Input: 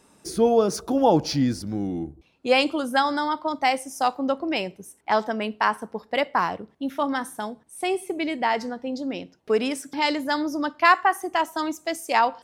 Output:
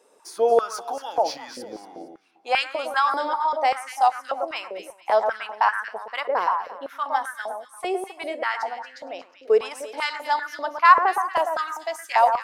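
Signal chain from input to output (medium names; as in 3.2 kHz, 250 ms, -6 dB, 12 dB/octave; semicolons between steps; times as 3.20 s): echo whose repeats swap between lows and highs 115 ms, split 1.6 kHz, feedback 52%, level -5 dB; step-sequenced high-pass 5.1 Hz 480–1600 Hz; trim -5 dB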